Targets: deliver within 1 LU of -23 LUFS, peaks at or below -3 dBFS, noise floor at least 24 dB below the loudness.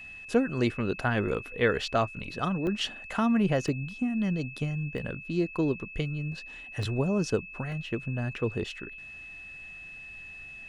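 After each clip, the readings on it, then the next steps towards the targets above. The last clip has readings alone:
dropouts 5; longest dropout 1.2 ms; steady tone 2600 Hz; tone level -42 dBFS; loudness -30.0 LUFS; peak -11.0 dBFS; loudness target -23.0 LUFS
-> interpolate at 2.67/3.68/4.98/6.83/7.72, 1.2 ms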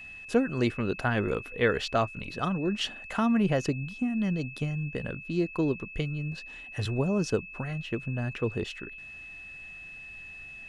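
dropouts 0; steady tone 2600 Hz; tone level -42 dBFS
-> notch 2600 Hz, Q 30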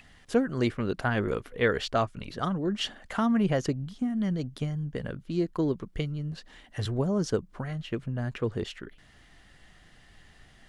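steady tone none; loudness -30.0 LUFS; peak -11.0 dBFS; loudness target -23.0 LUFS
-> gain +7 dB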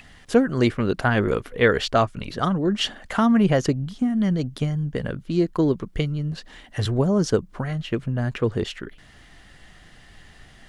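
loudness -23.0 LUFS; peak -4.0 dBFS; noise floor -50 dBFS

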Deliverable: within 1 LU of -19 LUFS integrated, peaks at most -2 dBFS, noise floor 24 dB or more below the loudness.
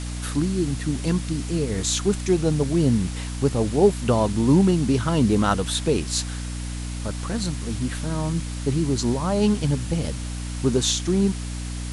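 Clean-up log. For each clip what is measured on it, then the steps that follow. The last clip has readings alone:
hum 60 Hz; harmonics up to 300 Hz; hum level -28 dBFS; noise floor -30 dBFS; noise floor target -47 dBFS; loudness -23.0 LUFS; peak -6.0 dBFS; loudness target -19.0 LUFS
-> de-hum 60 Hz, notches 5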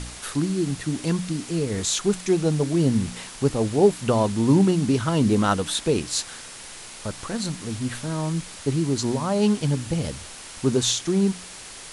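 hum none; noise floor -40 dBFS; noise floor target -48 dBFS
-> denoiser 8 dB, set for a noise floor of -40 dBFS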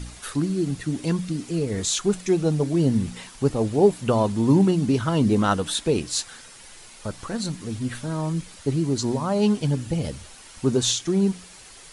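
noise floor -46 dBFS; noise floor target -48 dBFS
-> denoiser 6 dB, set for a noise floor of -46 dBFS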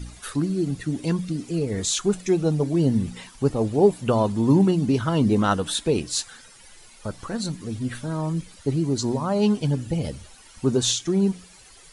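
noise floor -49 dBFS; loudness -23.5 LUFS; peak -7.0 dBFS; loudness target -19.0 LUFS
-> gain +4.5 dB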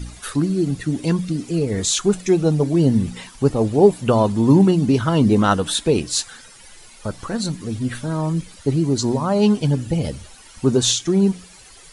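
loudness -19.0 LUFS; peak -2.5 dBFS; noise floor -45 dBFS

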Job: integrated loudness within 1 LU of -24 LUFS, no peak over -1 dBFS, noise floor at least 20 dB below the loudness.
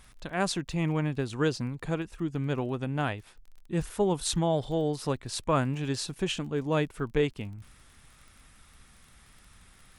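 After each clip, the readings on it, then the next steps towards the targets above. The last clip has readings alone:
ticks 27/s; loudness -30.5 LUFS; peak -13.0 dBFS; loudness target -24.0 LUFS
-> de-click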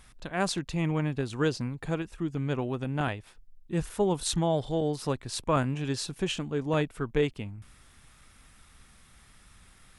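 ticks 0/s; loudness -30.5 LUFS; peak -13.0 dBFS; loudness target -24.0 LUFS
-> gain +6.5 dB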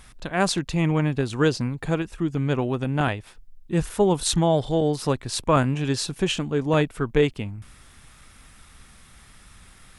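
loudness -24.0 LUFS; peak -6.5 dBFS; noise floor -51 dBFS

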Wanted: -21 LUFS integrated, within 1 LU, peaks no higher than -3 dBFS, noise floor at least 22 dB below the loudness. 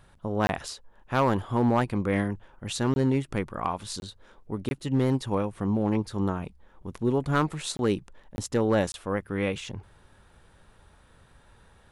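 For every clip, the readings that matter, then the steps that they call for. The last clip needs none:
clipped 0.5%; flat tops at -15.5 dBFS; dropouts 7; longest dropout 21 ms; loudness -28.0 LUFS; peak -15.5 dBFS; loudness target -21.0 LUFS
-> clip repair -15.5 dBFS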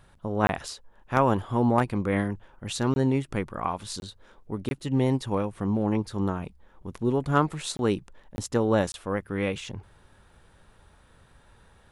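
clipped 0.0%; dropouts 7; longest dropout 21 ms
-> interpolate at 0.47/2.94/4/4.69/7.77/8.36/8.92, 21 ms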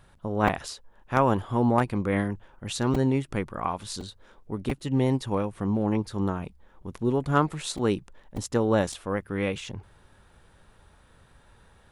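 dropouts 0; loudness -27.5 LUFS; peak -6.5 dBFS; loudness target -21.0 LUFS
-> gain +6.5 dB; limiter -3 dBFS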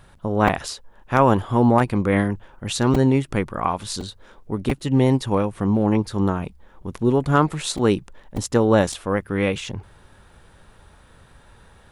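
loudness -21.0 LUFS; peak -3.0 dBFS; noise floor -52 dBFS

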